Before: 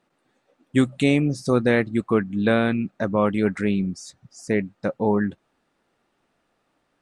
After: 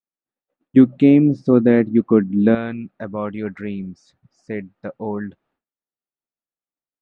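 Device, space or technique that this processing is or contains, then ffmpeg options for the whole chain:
hearing-loss simulation: -filter_complex "[0:a]asettb=1/sr,asplit=3[s0][s1][s2];[s0]atrim=end=0.764[s3];[s1]atrim=start=0.76:end=2.55,asetpts=PTS-STARTPTS,afade=t=in:d=0.004:c=qsin,afade=t=out:st=1.786:d=0.004:c=qsin,equalizer=f=270:t=o:w=2.1:g=14[s4];[s2]atrim=start=2.546[s5];[s3][s4]acrossfade=d=0.004:c1=hsin:c2=qsin[s6];[s6][s5]acrossfade=d=0.004:c1=qsin:c2=hsin,lowpass=3100,agate=range=0.0224:threshold=0.002:ratio=3:detection=peak,volume=0.562"

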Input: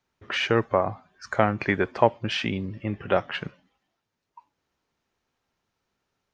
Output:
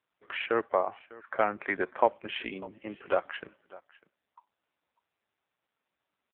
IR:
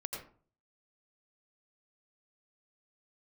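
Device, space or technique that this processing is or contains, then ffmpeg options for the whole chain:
satellite phone: -af "highpass=360,lowpass=3200,aecho=1:1:599:0.0891,volume=0.708" -ar 8000 -c:a libopencore_amrnb -b:a 5900

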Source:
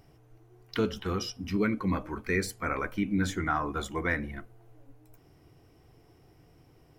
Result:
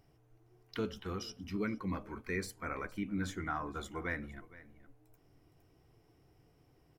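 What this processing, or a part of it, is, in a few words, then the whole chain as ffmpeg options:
ducked delay: -filter_complex "[0:a]asplit=3[s0][s1][s2];[s1]adelay=464,volume=0.447[s3];[s2]apad=whole_len=328536[s4];[s3][s4]sidechaincompress=threshold=0.01:ratio=8:attack=27:release=1280[s5];[s0][s5]amix=inputs=2:normalize=0,volume=0.376"

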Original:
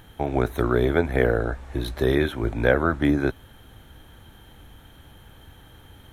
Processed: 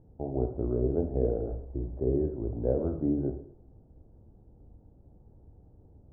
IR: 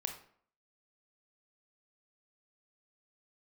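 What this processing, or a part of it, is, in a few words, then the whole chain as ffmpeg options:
next room: -filter_complex "[0:a]lowpass=f=600:w=0.5412,lowpass=f=600:w=1.3066[s0];[1:a]atrim=start_sample=2205[s1];[s0][s1]afir=irnorm=-1:irlink=0,volume=0.473"

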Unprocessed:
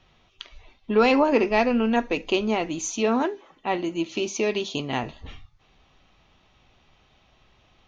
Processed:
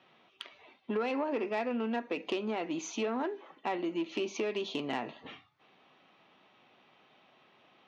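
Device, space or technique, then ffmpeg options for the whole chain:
AM radio: -af "highpass=150,lowpass=3200,acompressor=threshold=0.0398:ratio=6,asoftclip=type=tanh:threshold=0.0668,highpass=200"

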